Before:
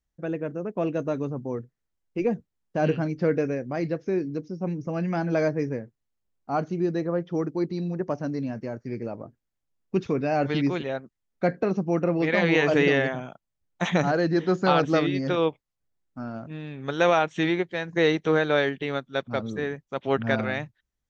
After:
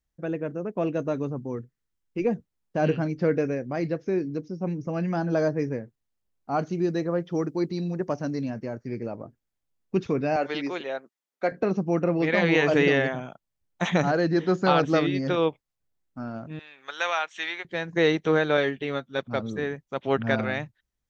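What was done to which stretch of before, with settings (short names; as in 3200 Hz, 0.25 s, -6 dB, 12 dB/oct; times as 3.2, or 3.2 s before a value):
1.36–2.24 bell 660 Hz -6.5 dB
5.12–5.55 bell 2200 Hz -12 dB 0.36 oct
6.59–8.5 high shelf 3400 Hz +7 dB
10.36–11.52 HPF 400 Hz
16.59–17.65 HPF 1100 Hz
18.57–19.19 notch comb 170 Hz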